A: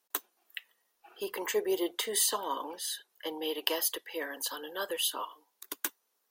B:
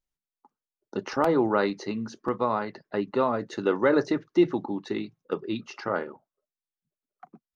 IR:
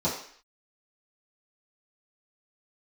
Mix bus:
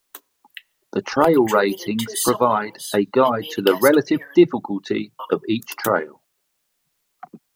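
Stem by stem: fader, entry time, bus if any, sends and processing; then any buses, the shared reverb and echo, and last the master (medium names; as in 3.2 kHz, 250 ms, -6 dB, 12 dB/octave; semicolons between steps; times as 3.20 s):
-6.0 dB, 0.00 s, muted 4.39–5.19 s, send -23 dB, none
-1.5 dB, 0.00 s, no send, none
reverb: on, RT60 0.55 s, pre-delay 3 ms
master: reverb removal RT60 1.2 s; level rider gain up to 12 dB; word length cut 12-bit, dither triangular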